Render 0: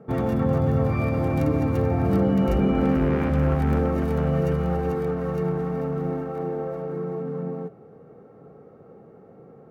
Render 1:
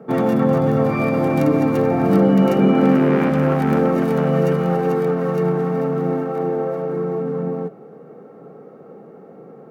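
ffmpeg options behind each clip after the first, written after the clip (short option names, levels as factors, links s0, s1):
-af "highpass=f=160:w=0.5412,highpass=f=160:w=1.3066,volume=2.37"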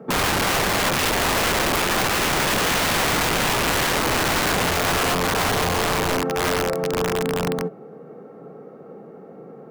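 -af "aeval=exprs='(mod(6.31*val(0)+1,2)-1)/6.31':c=same"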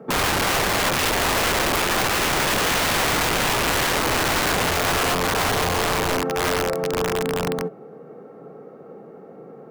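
-af "equalizer=f=190:w=1.5:g=-2.5"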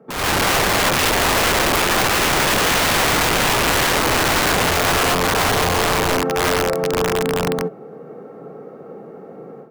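-af "dynaudnorm=f=150:g=3:m=4.22,volume=0.422"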